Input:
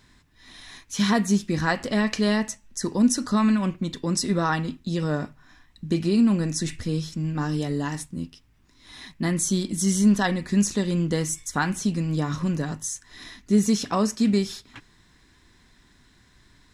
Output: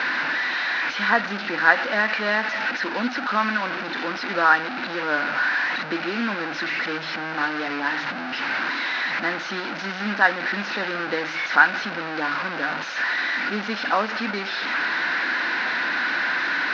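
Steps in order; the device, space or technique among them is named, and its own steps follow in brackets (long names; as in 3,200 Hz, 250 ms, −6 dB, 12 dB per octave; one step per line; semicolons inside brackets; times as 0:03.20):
digital answering machine (band-pass filter 300–3,000 Hz; linear delta modulator 32 kbit/s, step −25.5 dBFS; loudspeaker in its box 390–4,000 Hz, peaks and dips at 410 Hz −10 dB, 600 Hz −3 dB, 1,100 Hz −4 dB, 1,500 Hz +9 dB, 3,300 Hz −7 dB)
level +7 dB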